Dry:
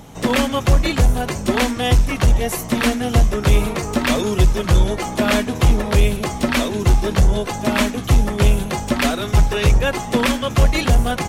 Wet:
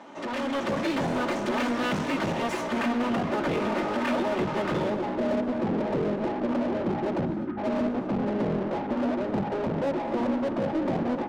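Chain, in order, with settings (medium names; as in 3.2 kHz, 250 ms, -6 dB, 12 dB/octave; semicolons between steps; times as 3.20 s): comb filter that takes the minimum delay 3.3 ms; Bessel low-pass 6.6 kHz, order 4, from 2.67 s 2.8 kHz, from 4.89 s 590 Hz; 7.25–7.58 s: spectral selection erased 370–1200 Hz; high-pass 150 Hz 24 dB/octave; treble shelf 2.4 kHz -11.5 dB; peak limiter -18 dBFS, peak gain reduction 11 dB; level rider gain up to 11.5 dB; overdrive pedal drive 18 dB, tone 3.4 kHz, clips at -18 dBFS; gated-style reverb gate 280 ms rising, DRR 12 dB; trim -8.5 dB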